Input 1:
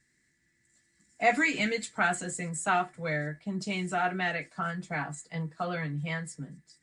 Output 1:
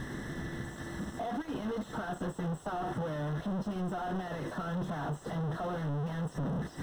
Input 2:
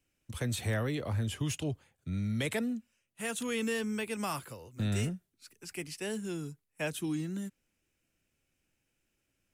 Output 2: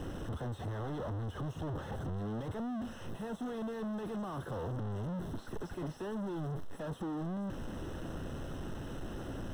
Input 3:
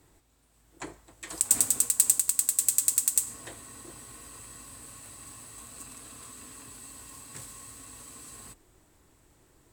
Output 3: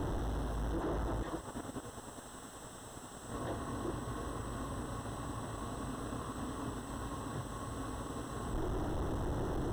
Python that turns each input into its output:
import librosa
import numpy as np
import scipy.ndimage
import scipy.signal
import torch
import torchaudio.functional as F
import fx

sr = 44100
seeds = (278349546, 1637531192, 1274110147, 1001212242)

y = np.sign(x) * np.sqrt(np.mean(np.square(x)))
y = np.convolve(y, np.full(19, 1.0 / 19))[:len(y)]
y = fx.transient(y, sr, attack_db=2, sustain_db=-3)